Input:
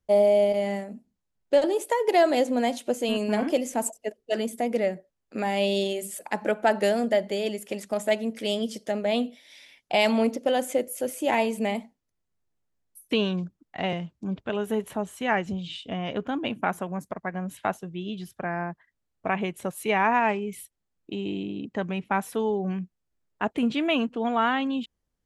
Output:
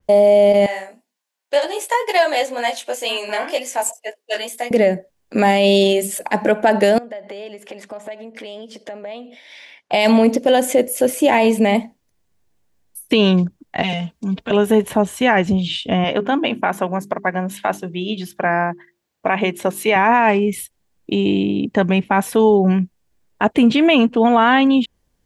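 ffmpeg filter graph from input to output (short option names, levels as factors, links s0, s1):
-filter_complex "[0:a]asettb=1/sr,asplit=3[s0][s1][s2];[s0]atrim=end=0.664[s3];[s1]atrim=start=0.66:end=4.71,asetpts=PTS-STARTPTS,afade=t=in:d=0.004:c=qsin,afade=t=out:st=4.046:d=0.004:c=qsin,highpass=840,flanger=delay=16:depth=5.9:speed=2[s4];[s2]atrim=start=4.706[s5];[s3][s4]acrossfade=d=0.004:c1=hsin:c2=qsin[s6];[s6][s5]acrossfade=d=0.004:c1=qsin:c2=hsin,asettb=1/sr,asplit=3[s7][s8][s9];[s7]atrim=end=6.984[s10];[s8]atrim=start=6.98:end=9.92,asetpts=PTS-STARTPTS,afade=t=in:d=0.004:c=qsin,afade=t=out:st=2.936:d=0.004:c=qsin,acompressor=threshold=0.0126:ratio=16:attack=3.2:release=140:knee=1:detection=peak,bandpass=f=1100:t=q:w=0.6[s11];[s9]atrim=start=9.916[s12];[s10][s11]acrossfade=d=0.004:c1=hsin:c2=qsin[s13];[s13][s12]acrossfade=d=0.004:c1=qsin:c2=hsin,asettb=1/sr,asplit=3[s14][s15][s16];[s14]atrim=end=13.824[s17];[s15]atrim=start=13.82:end=14.51,asetpts=PTS-STARTPTS,afade=t=in:d=0.004:c=qsin,afade=t=out:st=0.686:d=0.004:c=qsin,aecho=1:1:4.4:0.83,atrim=end_sample=30429,acrossover=split=190|3000[s18][s19][s20];[s19]acompressor=threshold=0.0141:ratio=4:attack=3.2:release=140:knee=2.83:detection=peak[s21];[s18][s21][s20]amix=inputs=3:normalize=0,lowshelf=f=360:g=-7.5[s22];[s16]atrim=start=14.506[s23];[s17][s22]acrossfade=d=0.004:c1=hsin:c2=qsin[s24];[s24][s23]acrossfade=d=0.004:c1=qsin:c2=hsin,asettb=1/sr,asplit=3[s25][s26][s27];[s25]atrim=end=16.044[s28];[s26]atrim=start=16.04:end=19.96,asetpts=PTS-STARTPTS,afade=t=in:d=0.004:c=qsin,afade=t=out:st=3.916:d=0.004:c=qsin,highpass=f=300:p=1,equalizer=f=9400:t=o:w=0.73:g=-4,bandreject=f=50:t=h:w=6,bandreject=f=100:t=h:w=6,bandreject=f=150:t=h:w=6,bandreject=f=200:t=h:w=6,bandreject=f=250:t=h:w=6,bandreject=f=300:t=h:w=6,bandreject=f=350:t=h:w=6,bandreject=f=400:t=h:w=6[s29];[s27]atrim=start=19.956[s30];[s28][s29]acrossfade=d=0.004:c1=hsin:c2=qsin[s31];[s31][s30]acrossfade=d=0.004:c1=qsin:c2=hsin,bandreject=f=1300:w=10,alimiter=level_in=7.94:limit=0.891:release=50:level=0:latency=1,adynamicequalizer=threshold=0.0355:dfrequency=4000:dqfactor=0.7:tfrequency=4000:tqfactor=0.7:attack=5:release=100:ratio=0.375:range=2:mode=cutabove:tftype=highshelf,volume=0.631"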